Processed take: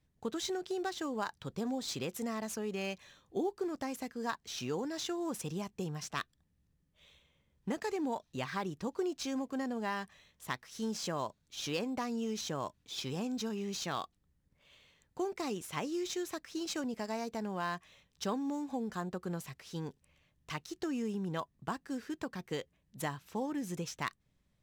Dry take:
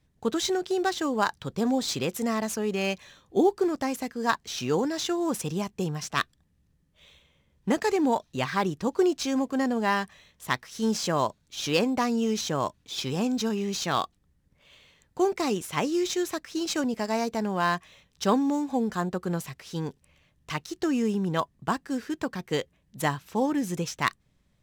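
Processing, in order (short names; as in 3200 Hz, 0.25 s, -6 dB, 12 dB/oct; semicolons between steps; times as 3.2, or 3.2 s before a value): compressor 2:1, threshold -28 dBFS, peak gain reduction 6.5 dB; gain -7 dB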